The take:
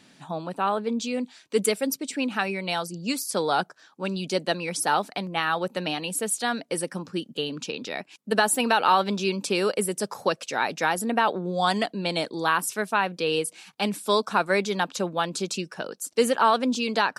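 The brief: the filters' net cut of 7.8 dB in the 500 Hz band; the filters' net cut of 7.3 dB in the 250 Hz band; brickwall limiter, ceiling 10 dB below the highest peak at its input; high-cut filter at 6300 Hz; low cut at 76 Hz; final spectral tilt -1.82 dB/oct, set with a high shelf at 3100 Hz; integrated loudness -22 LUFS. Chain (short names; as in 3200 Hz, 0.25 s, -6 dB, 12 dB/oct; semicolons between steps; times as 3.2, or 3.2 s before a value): HPF 76 Hz; LPF 6300 Hz; bell 250 Hz -7.5 dB; bell 500 Hz -8 dB; high shelf 3100 Hz +7.5 dB; gain +8.5 dB; limiter -8.5 dBFS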